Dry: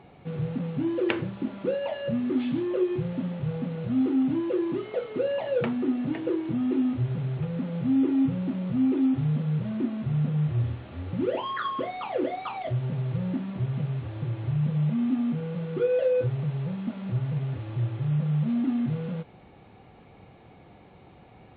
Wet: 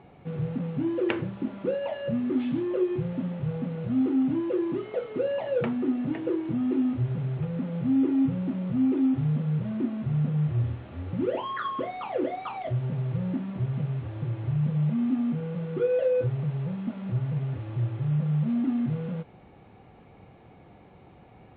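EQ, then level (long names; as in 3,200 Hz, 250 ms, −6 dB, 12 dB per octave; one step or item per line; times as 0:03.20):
high-frequency loss of the air 190 metres
0.0 dB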